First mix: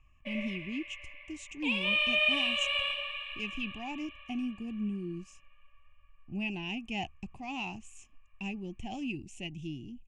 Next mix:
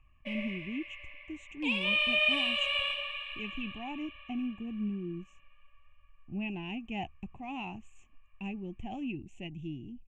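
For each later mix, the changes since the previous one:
speech: add moving average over 9 samples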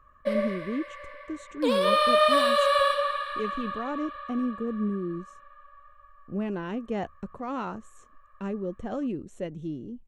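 master: remove drawn EQ curve 120 Hz 0 dB, 220 Hz −6 dB, 350 Hz −7 dB, 510 Hz −26 dB, 780 Hz 0 dB, 1,400 Hz −29 dB, 2,600 Hz +13 dB, 4,300 Hz −20 dB, 6,900 Hz −6 dB, 11,000 Hz −26 dB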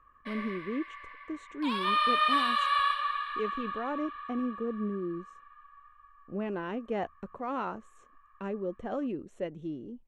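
background: add Chebyshev high-pass with heavy ripple 700 Hz, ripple 3 dB
master: add bass and treble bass −8 dB, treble −10 dB

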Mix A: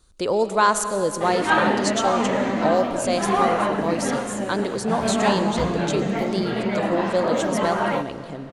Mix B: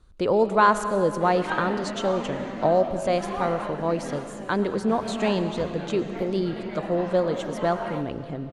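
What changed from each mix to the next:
speech: add bass and treble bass +4 dB, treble −14 dB
background −11.0 dB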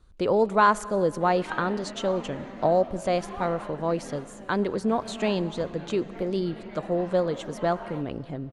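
speech: send −10.0 dB
background −6.5 dB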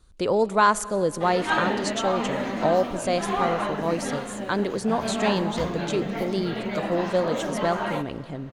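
background +11.5 dB
master: add high-shelf EQ 4,400 Hz +11 dB

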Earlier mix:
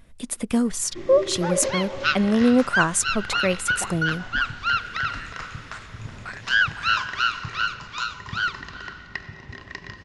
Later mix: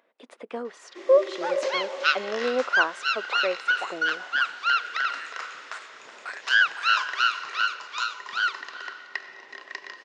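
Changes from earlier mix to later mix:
speech: add head-to-tape spacing loss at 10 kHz 36 dB
master: add high-pass filter 410 Hz 24 dB per octave

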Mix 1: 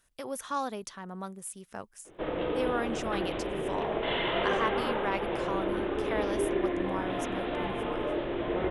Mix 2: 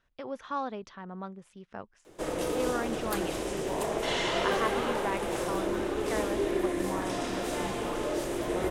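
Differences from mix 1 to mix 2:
speech: add high-frequency loss of the air 210 metres
background: remove Butterworth low-pass 3,600 Hz 72 dB per octave

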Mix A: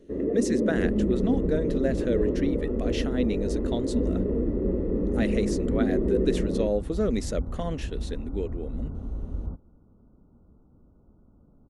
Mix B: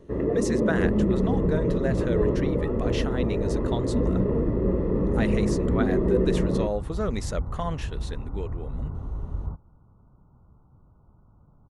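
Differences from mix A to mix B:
first sound +6.0 dB
master: add graphic EQ with 10 bands 125 Hz +8 dB, 250 Hz −8 dB, 500 Hz −4 dB, 1,000 Hz +10 dB

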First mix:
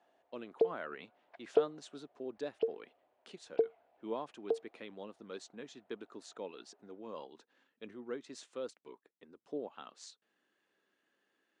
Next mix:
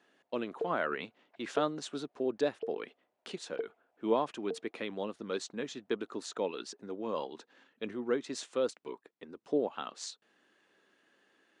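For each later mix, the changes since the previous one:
speech +10.0 dB
background −7.0 dB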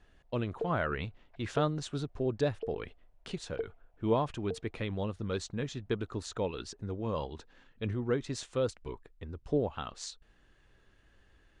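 speech: remove high-pass filter 230 Hz 24 dB per octave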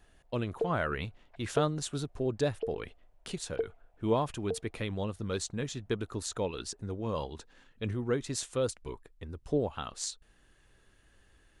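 speech: remove high-frequency loss of the air 92 metres
background +4.0 dB

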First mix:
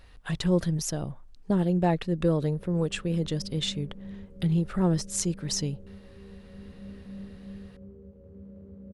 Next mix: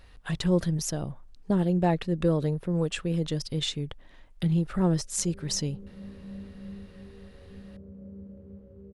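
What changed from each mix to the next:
background: entry +2.60 s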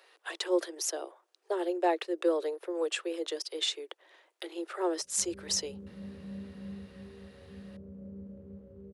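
speech: add Butterworth high-pass 330 Hz 96 dB per octave
master: add high-pass filter 93 Hz 6 dB per octave

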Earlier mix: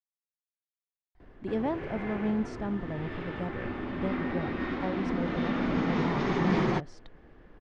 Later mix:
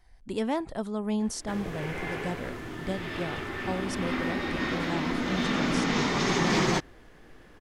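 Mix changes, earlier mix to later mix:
speech: entry −1.15 s
master: remove head-to-tape spacing loss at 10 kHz 32 dB

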